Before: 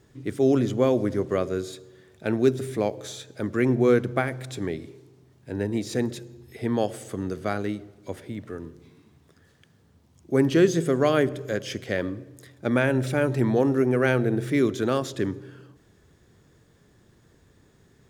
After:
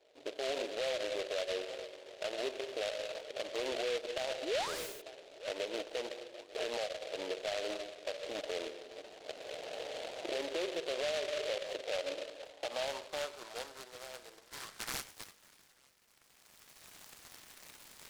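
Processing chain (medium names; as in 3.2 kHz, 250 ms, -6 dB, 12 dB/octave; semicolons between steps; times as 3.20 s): median filter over 41 samples; recorder AGC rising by 18 dB/s; reverberation RT60 0.60 s, pre-delay 6 ms, DRR 12.5 dB; painted sound rise, 4.42–5.02 s, 250–8400 Hz -24 dBFS; band-pass sweep 600 Hz -> 3.9 kHz, 14.38–15.18 s; filtered feedback delay 891 ms, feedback 39%, low-pass 890 Hz, level -23.5 dB; high-pass sweep 610 Hz -> 2 kHz, 12.21–14.00 s; compression 12:1, threshold -29 dBFS, peak gain reduction 15 dB; peak limiter -29.5 dBFS, peak gain reduction 10.5 dB; delay time shaken by noise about 2.7 kHz, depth 0.13 ms; trim +1 dB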